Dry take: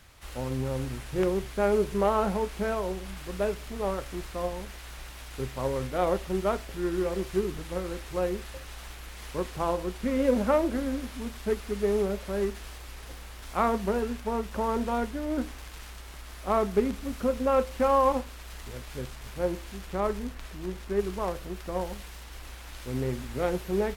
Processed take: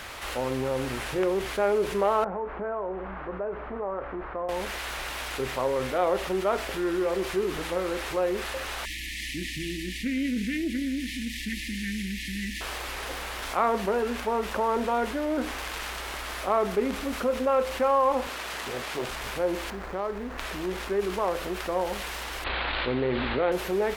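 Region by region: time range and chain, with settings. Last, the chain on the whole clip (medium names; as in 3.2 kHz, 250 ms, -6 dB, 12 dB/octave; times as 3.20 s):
2.24–4.49 s: four-pole ladder low-pass 1.7 kHz, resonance 20% + compression 3:1, threshold -37 dBFS
8.85–12.61 s: brick-wall FIR band-stop 340–1700 Hz + loudspeaker Doppler distortion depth 0.11 ms
18.27–19.09 s: high-pass 95 Hz + loudspeaker Doppler distortion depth 0.73 ms
19.70–20.38 s: median filter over 15 samples + compression 2:1, threshold -41 dBFS
22.44–23.52 s: steep low-pass 4.3 kHz 72 dB/octave + expander -38 dBFS + level flattener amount 70%
whole clip: tone controls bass -14 dB, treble -6 dB; level flattener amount 50%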